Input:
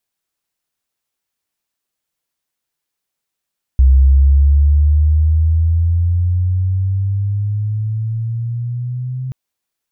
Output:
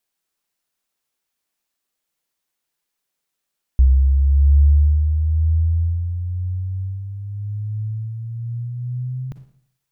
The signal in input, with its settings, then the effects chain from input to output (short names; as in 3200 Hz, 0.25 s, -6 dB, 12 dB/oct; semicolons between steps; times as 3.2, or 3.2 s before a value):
chirp logarithmic 65 Hz -> 130 Hz -5 dBFS -> -20 dBFS 5.53 s
bell 98 Hz -10 dB 0.6 oct; Schroeder reverb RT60 0.6 s, DRR 9 dB